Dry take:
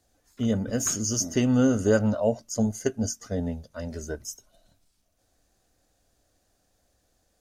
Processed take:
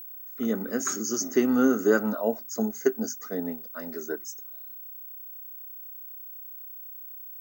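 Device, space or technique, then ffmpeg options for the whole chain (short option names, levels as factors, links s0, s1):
old television with a line whistle: -af "highpass=f=220:w=0.5412,highpass=f=220:w=1.3066,equalizer=f=370:t=q:w=4:g=7,equalizer=f=570:t=q:w=4:g=-7,equalizer=f=1300:t=q:w=4:g=8,equalizer=f=1900:t=q:w=4:g=3,equalizer=f=3000:t=q:w=4:g=-10,equalizer=f=5100:t=q:w=4:g=-4,lowpass=f=6900:w=0.5412,lowpass=f=6900:w=1.3066,aeval=exprs='val(0)+0.0112*sin(2*PI*15734*n/s)':c=same"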